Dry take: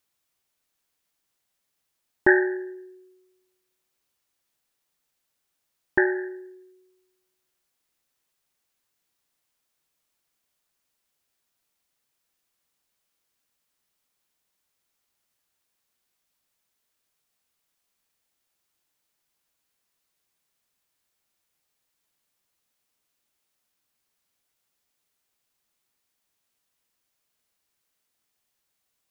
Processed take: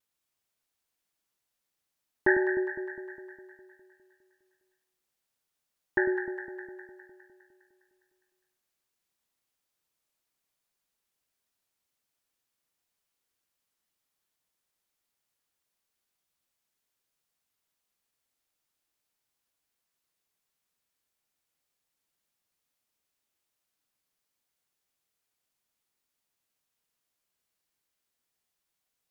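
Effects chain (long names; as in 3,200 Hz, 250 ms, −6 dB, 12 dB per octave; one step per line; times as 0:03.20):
pitch vibrato 0.58 Hz 20 cents
delay that swaps between a low-pass and a high-pass 102 ms, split 810 Hz, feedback 77%, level −6 dB
level −6 dB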